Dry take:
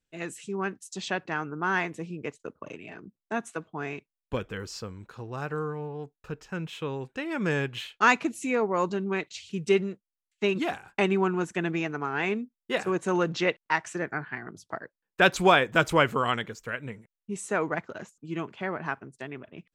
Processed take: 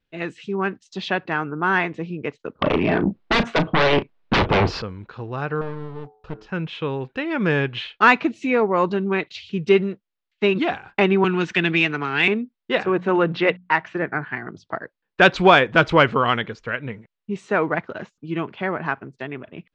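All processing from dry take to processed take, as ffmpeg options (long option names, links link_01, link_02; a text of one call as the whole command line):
ffmpeg -i in.wav -filter_complex "[0:a]asettb=1/sr,asplit=3[link_01][link_02][link_03];[link_01]atrim=end=2.594[link_04];[link_02]atrim=start=2.59:end=4.82,asetpts=PTS-STARTPTS,afade=type=in:duration=0.004:curve=qsin,afade=type=out:start_time=2.226:duration=0.004:curve=qsin,lowpass=frequency=1000:poles=1,aeval=exprs='0.0944*sin(PI/2*7.08*val(0)/0.0944)':channel_layout=same,asplit=2[link_05][link_06];[link_06]adelay=35,volume=-12dB[link_07];[link_05][link_07]amix=inputs=2:normalize=0,atrim=end_sample=98343[link_08];[link_03]atrim=start=4.816[link_09];[link_04][link_08]acrossfade=duration=0.004:curve1=hsin:curve2=qsin[link_10];[link_10][link_09]acrossfade=duration=0.004:curve1=qsin:curve2=hsin,asettb=1/sr,asplit=3[link_11][link_12][link_13];[link_11]atrim=end=5.614[link_14];[link_12]atrim=start=5.61:end=6.47,asetpts=PTS-STARTPTS,afade=type=in:duration=0.004:curve=qsin,afade=type=out:start_time=0.856:duration=0.004:curve=qsin,equalizer=frequency=2100:width=1.6:gain=-10,bandreject=frequency=107.7:width_type=h:width=4,bandreject=frequency=215.4:width_type=h:width=4,bandreject=frequency=323.1:width_type=h:width=4,bandreject=frequency=430.8:width_type=h:width=4,bandreject=frequency=538.5:width_type=h:width=4,bandreject=frequency=646.2:width_type=h:width=4,bandreject=frequency=753.9:width_type=h:width=4,bandreject=frequency=861.6:width_type=h:width=4,bandreject=frequency=969.3:width_type=h:width=4,bandreject=frequency=1077:width_type=h:width=4,bandreject=frequency=1184.7:width_type=h:width=4,bandreject=frequency=1292.4:width_type=h:width=4,bandreject=frequency=1400.1:width_type=h:width=4,bandreject=frequency=1507.8:width_type=h:width=4,bandreject=frequency=1615.5:width_type=h:width=4,bandreject=frequency=1723.2:width_type=h:width=4,bandreject=frequency=1830.9:width_type=h:width=4,bandreject=frequency=1938.6:width_type=h:width=4,aeval=exprs='clip(val(0),-1,0.00447)':channel_layout=same[link_15];[link_13]atrim=start=6.466[link_16];[link_14][link_15]acrossfade=duration=0.004:curve1=hsin:curve2=qsin[link_17];[link_17][link_16]acrossfade=duration=0.004:curve1=qsin:curve2=hsin,asettb=1/sr,asplit=3[link_18][link_19][link_20];[link_18]atrim=end=11.244[link_21];[link_19]atrim=start=11.24:end=12.28,asetpts=PTS-STARTPTS,afade=type=in:duration=0.004:curve=qsin,afade=type=out:start_time=1.036:duration=0.004:curve=qsin,acrossover=split=380|3000[link_22][link_23][link_24];[link_23]acompressor=threshold=-43dB:ratio=3:attack=3.2:release=140:knee=2.83:detection=peak[link_25];[link_22][link_25][link_24]amix=inputs=3:normalize=0,equalizer=frequency=2800:width_type=o:width=3:gain=14.5[link_26];[link_20]atrim=start=12.276[link_27];[link_21][link_26]acrossfade=duration=0.004:curve1=hsin:curve2=qsin[link_28];[link_28][link_27]acrossfade=duration=0.004:curve1=qsin:curve2=hsin,asettb=1/sr,asplit=3[link_29][link_30][link_31];[link_29]atrim=end=12.864[link_32];[link_30]atrim=start=12.86:end=14.23,asetpts=PTS-STARTPTS,afade=type=in:duration=0.004:curve=qsin,afade=type=out:start_time=1.366:duration=0.004:curve=qsin,lowpass=3600,bandreject=frequency=60:width_type=h:width=6,bandreject=frequency=120:width_type=h:width=6,bandreject=frequency=180:width_type=h:width=6,bandreject=frequency=240:width_type=h:width=6[link_33];[link_31]atrim=start=14.226[link_34];[link_32][link_33]acrossfade=duration=0.004:curve1=hsin:curve2=qsin[link_35];[link_35][link_34]acrossfade=duration=0.004:curve1=qsin:curve2=hsin,lowpass=frequency=4300:width=0.5412,lowpass=frequency=4300:width=1.3066,acontrast=29,volume=2dB" out.wav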